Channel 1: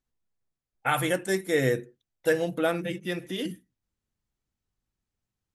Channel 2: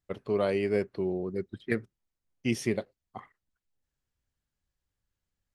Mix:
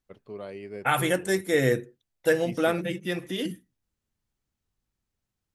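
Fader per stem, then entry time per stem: +1.5 dB, -11.5 dB; 0.00 s, 0.00 s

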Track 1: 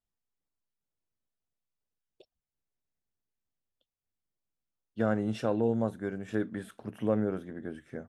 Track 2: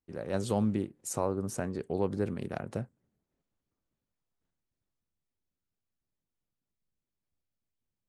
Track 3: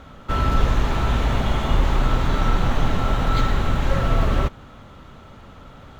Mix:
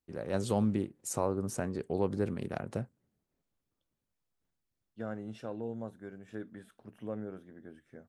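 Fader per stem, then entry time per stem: -11.0 dB, -0.5 dB, mute; 0.00 s, 0.00 s, mute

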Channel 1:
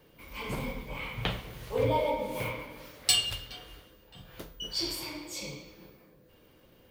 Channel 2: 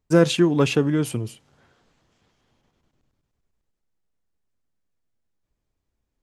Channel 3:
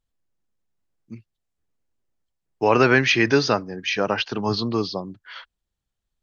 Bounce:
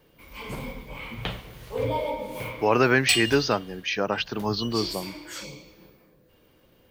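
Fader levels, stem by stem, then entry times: 0.0 dB, mute, -3.5 dB; 0.00 s, mute, 0.00 s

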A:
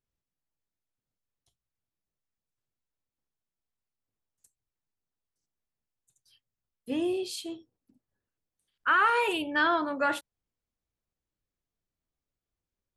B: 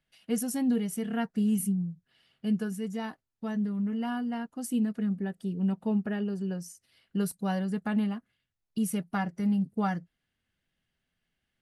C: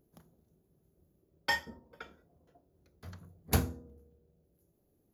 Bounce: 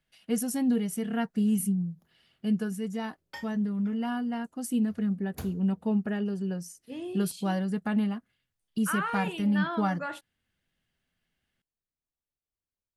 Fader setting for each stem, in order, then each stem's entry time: -8.5 dB, +1.0 dB, -12.0 dB; 0.00 s, 0.00 s, 1.85 s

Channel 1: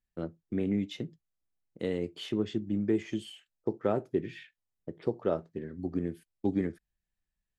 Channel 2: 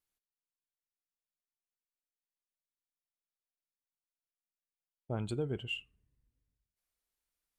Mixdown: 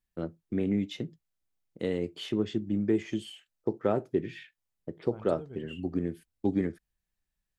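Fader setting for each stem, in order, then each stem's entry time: +1.5 dB, -9.5 dB; 0.00 s, 0.00 s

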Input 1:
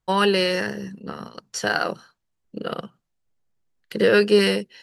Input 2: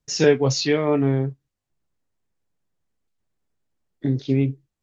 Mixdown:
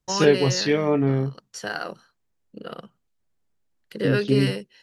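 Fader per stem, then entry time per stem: -7.5 dB, -1.0 dB; 0.00 s, 0.00 s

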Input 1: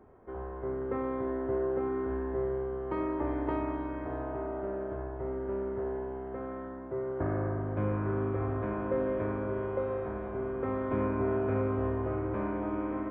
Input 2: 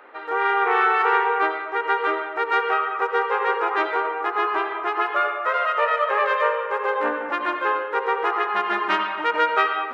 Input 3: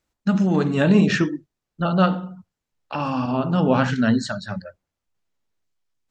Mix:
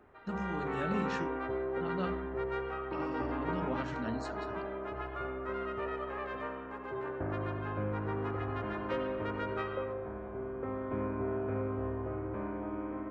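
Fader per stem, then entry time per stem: -5.0 dB, -20.0 dB, -19.5 dB; 0.00 s, 0.00 s, 0.00 s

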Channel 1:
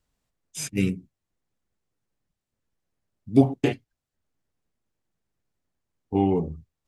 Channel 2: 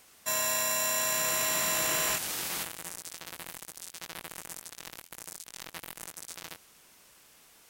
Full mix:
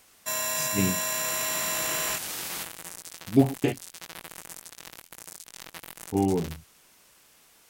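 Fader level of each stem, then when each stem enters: -2.5 dB, 0.0 dB; 0.00 s, 0.00 s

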